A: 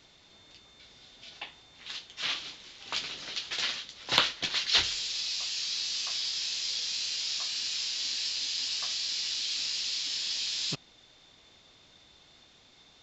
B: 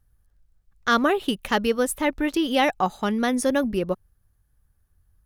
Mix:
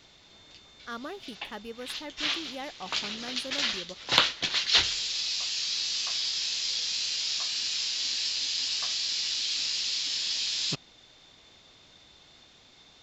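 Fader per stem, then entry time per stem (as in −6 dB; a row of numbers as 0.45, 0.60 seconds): +2.5, −18.5 decibels; 0.00, 0.00 seconds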